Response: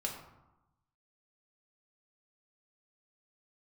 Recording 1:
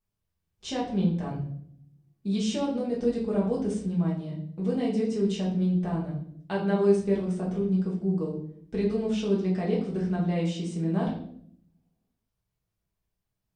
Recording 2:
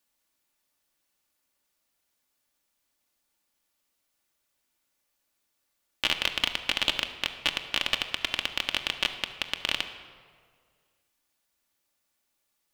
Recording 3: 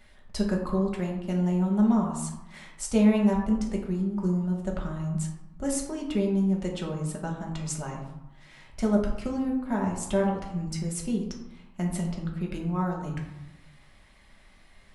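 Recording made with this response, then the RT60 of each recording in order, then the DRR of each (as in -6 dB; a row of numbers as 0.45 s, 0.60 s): 3; 0.65 s, 2.0 s, 0.95 s; -5.0 dB, 4.5 dB, -1.0 dB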